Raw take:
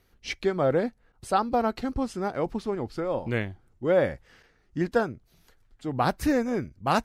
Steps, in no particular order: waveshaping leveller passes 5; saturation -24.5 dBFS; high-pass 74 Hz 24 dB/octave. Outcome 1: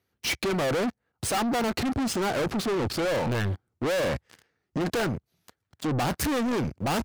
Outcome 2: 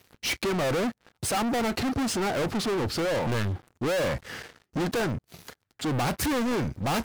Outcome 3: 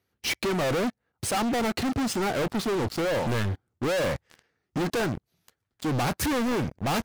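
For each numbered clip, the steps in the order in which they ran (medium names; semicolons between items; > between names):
waveshaping leveller > high-pass > saturation; high-pass > saturation > waveshaping leveller; high-pass > waveshaping leveller > saturation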